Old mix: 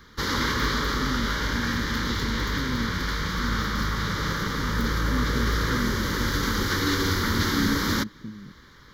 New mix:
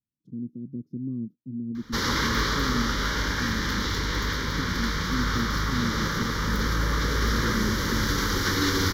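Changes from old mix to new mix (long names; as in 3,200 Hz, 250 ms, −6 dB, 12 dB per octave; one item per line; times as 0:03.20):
background: entry +1.75 s
master: add parametric band 5,600 Hz +5 dB 0.21 octaves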